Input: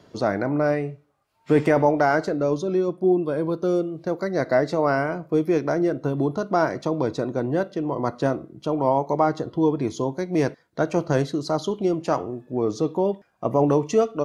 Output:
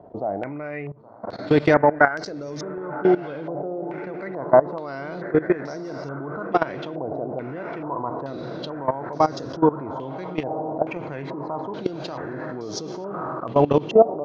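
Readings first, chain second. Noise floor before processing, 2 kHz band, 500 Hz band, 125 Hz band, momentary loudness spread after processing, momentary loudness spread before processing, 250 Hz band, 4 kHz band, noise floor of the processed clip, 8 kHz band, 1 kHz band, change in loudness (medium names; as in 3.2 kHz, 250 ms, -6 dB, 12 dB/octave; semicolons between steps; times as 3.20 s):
-64 dBFS, +2.0 dB, -0.5 dB, -4.0 dB, 15 LU, 6 LU, -3.0 dB, +0.5 dB, -35 dBFS, no reading, +1.0 dB, -1.0 dB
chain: echo that smears into a reverb 1112 ms, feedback 47%, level -10 dB; level held to a coarse grid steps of 18 dB; step-sequenced low-pass 2.3 Hz 740–5400 Hz; trim +3.5 dB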